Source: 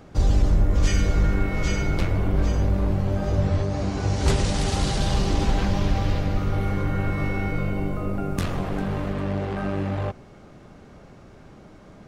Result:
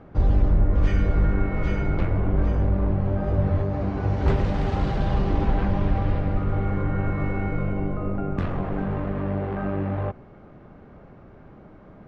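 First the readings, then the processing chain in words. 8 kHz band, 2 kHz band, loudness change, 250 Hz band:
under -20 dB, -3.5 dB, -0.5 dB, 0.0 dB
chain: LPF 1800 Hz 12 dB/oct

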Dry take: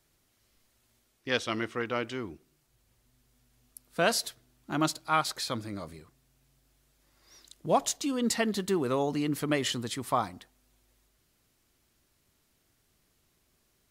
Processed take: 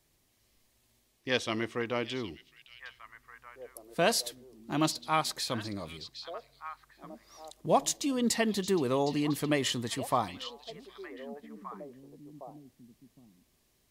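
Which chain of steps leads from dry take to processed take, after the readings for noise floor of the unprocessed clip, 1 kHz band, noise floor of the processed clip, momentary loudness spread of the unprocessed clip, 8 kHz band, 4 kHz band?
-72 dBFS, -1.0 dB, -71 dBFS, 13 LU, 0.0 dB, +0.5 dB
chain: bell 1400 Hz -9 dB 0.22 oct; on a send: delay with a stepping band-pass 0.762 s, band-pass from 3700 Hz, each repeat -1.4 oct, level -8 dB

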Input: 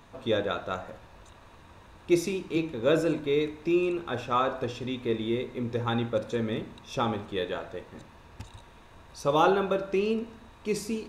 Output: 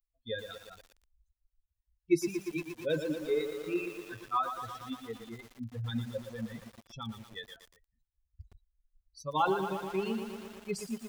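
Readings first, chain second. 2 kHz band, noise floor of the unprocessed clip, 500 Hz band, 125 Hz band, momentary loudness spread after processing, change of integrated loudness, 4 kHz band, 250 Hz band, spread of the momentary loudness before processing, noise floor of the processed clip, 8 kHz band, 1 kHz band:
-6.5 dB, -53 dBFS, -8.0 dB, -6.5 dB, 15 LU, -6.5 dB, -7.0 dB, -7.0 dB, 17 LU, -85 dBFS, -4.5 dB, -5.0 dB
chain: per-bin expansion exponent 3; bell 600 Hz -9 dB 0.35 oct; lo-fi delay 0.117 s, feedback 80%, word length 8-bit, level -8 dB

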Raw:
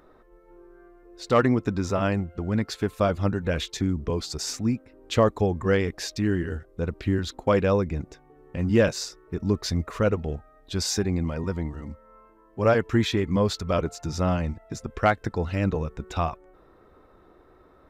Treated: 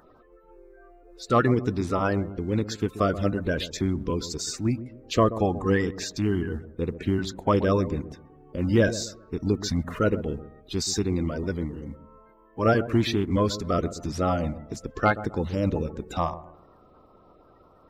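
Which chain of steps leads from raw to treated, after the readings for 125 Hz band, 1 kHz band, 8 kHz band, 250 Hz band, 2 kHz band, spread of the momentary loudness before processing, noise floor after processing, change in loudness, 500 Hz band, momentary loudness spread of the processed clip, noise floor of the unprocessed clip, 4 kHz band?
-1.0 dB, +1.0 dB, 0.0 dB, +0.5 dB, -0.5 dB, 12 LU, -56 dBFS, -0.5 dB, -1.0 dB, 11 LU, -56 dBFS, -1.0 dB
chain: bin magnitudes rounded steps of 30 dB; dark delay 0.13 s, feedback 31%, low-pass 970 Hz, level -13 dB

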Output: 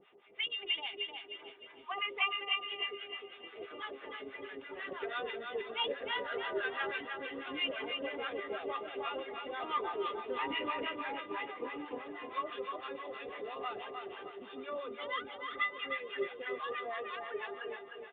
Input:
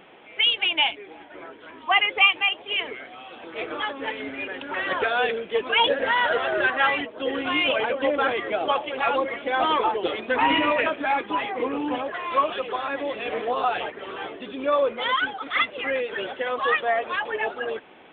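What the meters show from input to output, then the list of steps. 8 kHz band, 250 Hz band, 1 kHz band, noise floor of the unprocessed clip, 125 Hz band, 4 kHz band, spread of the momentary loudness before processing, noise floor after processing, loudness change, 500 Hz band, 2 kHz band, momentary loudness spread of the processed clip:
n/a, -15.0 dB, -15.5 dB, -45 dBFS, -16.0 dB, -13.5 dB, 14 LU, -54 dBFS, -14.5 dB, -14.0 dB, -14.5 dB, 10 LU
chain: resonator 400 Hz, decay 0.29 s, harmonics odd, mix 90%; harmonic tremolo 6.1 Hz, depth 100%, crossover 770 Hz; feedback echo 0.307 s, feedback 41%, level -5 dB; gain +5.5 dB

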